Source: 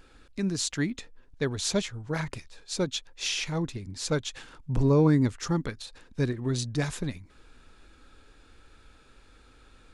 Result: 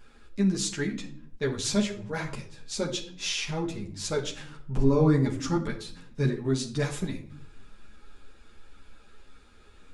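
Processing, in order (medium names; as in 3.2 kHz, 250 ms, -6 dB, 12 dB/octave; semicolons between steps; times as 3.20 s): band-stop 4.2 kHz, Q 29; simulated room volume 1000 m³, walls furnished, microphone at 1.3 m; three-phase chorus; trim +2 dB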